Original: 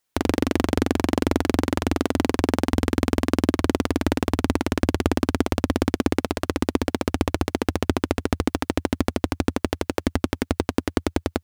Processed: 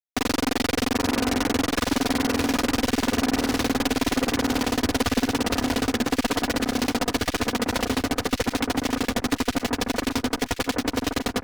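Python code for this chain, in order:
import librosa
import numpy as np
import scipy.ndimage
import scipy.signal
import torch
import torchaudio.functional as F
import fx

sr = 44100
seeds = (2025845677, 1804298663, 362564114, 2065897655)

p1 = fx.cvsd(x, sr, bps=32000)
p2 = fx.highpass(p1, sr, hz=1100.0, slope=6)
p3 = p2 + 0.85 * np.pad(p2, (int(4.1 * sr / 1000.0), 0))[:len(p2)]
p4 = fx.fuzz(p3, sr, gain_db=54.0, gate_db=-54.0)
p5 = p4 + fx.echo_alternate(p4, sr, ms=779, hz=1700.0, feedback_pct=53, wet_db=-5, dry=0)
y = F.gain(torch.from_numpy(p5), -6.5).numpy()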